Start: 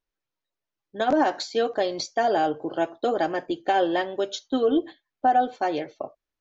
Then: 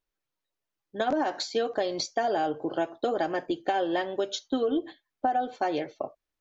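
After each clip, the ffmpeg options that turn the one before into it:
ffmpeg -i in.wav -af "acompressor=threshold=-23dB:ratio=6" out.wav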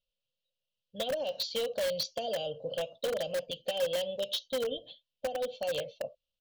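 ffmpeg -i in.wav -filter_complex "[0:a]firequalizer=gain_entry='entry(200,0);entry(350,-28);entry(510,9);entry(800,-17);entry(1800,-27);entry(2800,10);entry(8000,-13)':delay=0.05:min_phase=1,asplit=2[link_01][link_02];[link_02]aeval=exprs='(mod(14.1*val(0)+1,2)-1)/14.1':channel_layout=same,volume=-7dB[link_03];[link_01][link_03]amix=inputs=2:normalize=0,volume=-5.5dB" out.wav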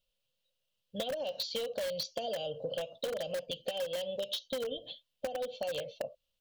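ffmpeg -i in.wav -af "acompressor=threshold=-39dB:ratio=6,volume=5.5dB" out.wav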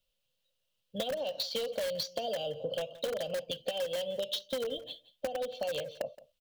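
ffmpeg -i in.wav -filter_complex "[0:a]acrossover=split=180|3800[link_01][link_02][link_03];[link_03]acrusher=bits=3:mode=log:mix=0:aa=0.000001[link_04];[link_01][link_02][link_04]amix=inputs=3:normalize=0,aecho=1:1:172:0.112,volume=1.5dB" out.wav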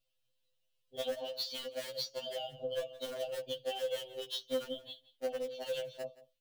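ffmpeg -i in.wav -af "afftfilt=real='re*2.45*eq(mod(b,6),0)':imag='im*2.45*eq(mod(b,6),0)':win_size=2048:overlap=0.75,volume=-1.5dB" out.wav

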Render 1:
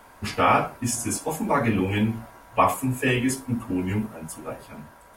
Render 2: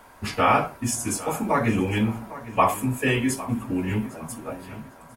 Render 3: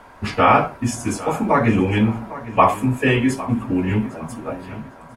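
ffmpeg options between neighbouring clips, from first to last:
ffmpeg -i in.wav -filter_complex "[0:a]asplit=2[link_01][link_02];[link_02]adelay=804,lowpass=frequency=4700:poles=1,volume=-16dB,asplit=2[link_03][link_04];[link_04]adelay=804,lowpass=frequency=4700:poles=1,volume=0.34,asplit=2[link_05][link_06];[link_06]adelay=804,lowpass=frequency=4700:poles=1,volume=0.34[link_07];[link_01][link_03][link_05][link_07]amix=inputs=4:normalize=0" out.wav
ffmpeg -i in.wav -af "aemphasis=mode=reproduction:type=50fm,volume=5.5dB" out.wav

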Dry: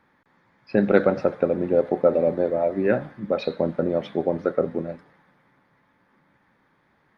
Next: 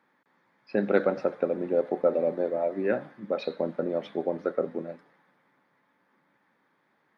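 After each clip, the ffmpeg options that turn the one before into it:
ffmpeg -i in.wav -af "highpass=210,volume=-5dB" out.wav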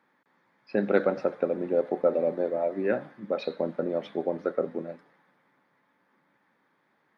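ffmpeg -i in.wav -af anull out.wav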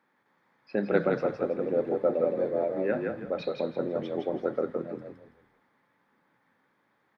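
ffmpeg -i in.wav -filter_complex "[0:a]asplit=5[link_01][link_02][link_03][link_04][link_05];[link_02]adelay=164,afreqshift=-32,volume=-3.5dB[link_06];[link_03]adelay=328,afreqshift=-64,volume=-13.7dB[link_07];[link_04]adelay=492,afreqshift=-96,volume=-23.8dB[link_08];[link_05]adelay=656,afreqshift=-128,volume=-34dB[link_09];[link_01][link_06][link_07][link_08][link_09]amix=inputs=5:normalize=0,volume=-2.5dB" out.wav

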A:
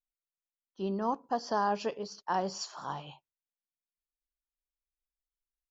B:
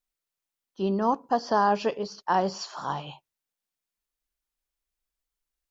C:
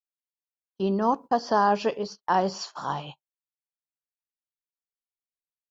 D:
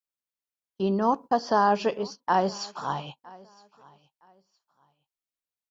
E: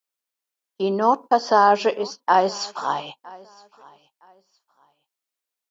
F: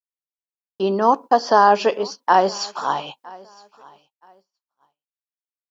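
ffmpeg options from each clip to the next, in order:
ffmpeg -i in.wav -filter_complex "[0:a]acrossover=split=5100[link_01][link_02];[link_02]acompressor=threshold=-58dB:ratio=4:attack=1:release=60[link_03];[link_01][link_03]amix=inputs=2:normalize=0,volume=7dB" out.wav
ffmpeg -i in.wav -af "agate=range=-32dB:threshold=-39dB:ratio=16:detection=peak,volume=1dB" out.wav
ffmpeg -i in.wav -af "aecho=1:1:963|1926:0.0631|0.0158" out.wav
ffmpeg -i in.wav -af "highpass=310,volume=6.5dB" out.wav
ffmpeg -i in.wav -af "agate=range=-33dB:threshold=-52dB:ratio=3:detection=peak,volume=2dB" out.wav

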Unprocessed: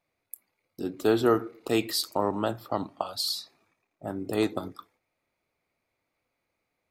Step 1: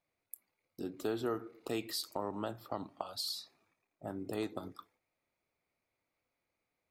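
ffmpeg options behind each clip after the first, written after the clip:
ffmpeg -i in.wav -af "acompressor=threshold=-31dB:ratio=2,volume=-6dB" out.wav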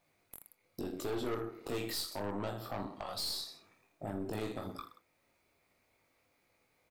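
ffmpeg -i in.wav -af "aecho=1:1:20|46|79.8|123.7|180.9:0.631|0.398|0.251|0.158|0.1,aeval=exprs='(tanh(50.1*val(0)+0.55)-tanh(0.55))/50.1':channel_layout=same,alimiter=level_in=16.5dB:limit=-24dB:level=0:latency=1:release=467,volume=-16.5dB,volume=12dB" out.wav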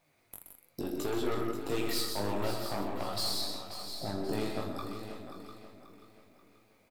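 ffmpeg -i in.wav -filter_complex "[0:a]asplit=2[link_01][link_02];[link_02]aecho=0:1:127|130|168|698:0.316|0.133|0.355|0.266[link_03];[link_01][link_03]amix=inputs=2:normalize=0,flanger=delay=6:depth=8.6:regen=63:speed=0.56:shape=triangular,asplit=2[link_04][link_05];[link_05]aecho=0:1:534|1068|1602|2136:0.299|0.125|0.0527|0.0221[link_06];[link_04][link_06]amix=inputs=2:normalize=0,volume=7.5dB" out.wav

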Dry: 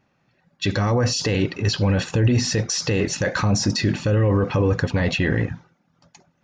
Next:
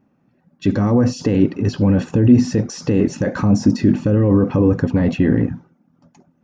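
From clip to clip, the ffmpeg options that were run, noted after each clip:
ffmpeg -i in.wav -af "equalizer=frequency=250:width_type=o:width=1:gain=12,equalizer=frequency=2000:width_type=o:width=1:gain=-5,equalizer=frequency=4000:width_type=o:width=1:gain=-10,equalizer=frequency=8000:width_type=o:width=1:gain=-6" out.wav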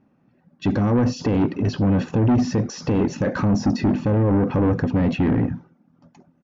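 ffmpeg -i in.wav -af "lowpass=5400,aresample=16000,asoftclip=type=tanh:threshold=-14dB,aresample=44100" out.wav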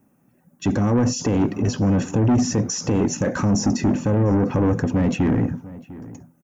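ffmpeg -i in.wav -filter_complex "[0:a]acrossover=split=260[link_01][link_02];[link_02]aexciter=amount=13.5:drive=2.6:freq=6400[link_03];[link_01][link_03]amix=inputs=2:normalize=0,asplit=2[link_04][link_05];[link_05]adelay=699.7,volume=-18dB,highshelf=frequency=4000:gain=-15.7[link_06];[link_04][link_06]amix=inputs=2:normalize=0" out.wav

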